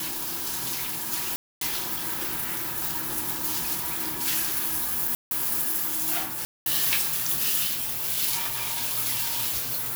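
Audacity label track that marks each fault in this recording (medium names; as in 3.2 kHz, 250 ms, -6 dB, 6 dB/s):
1.360000	1.610000	dropout 253 ms
5.150000	5.310000	dropout 161 ms
6.450000	6.660000	dropout 211 ms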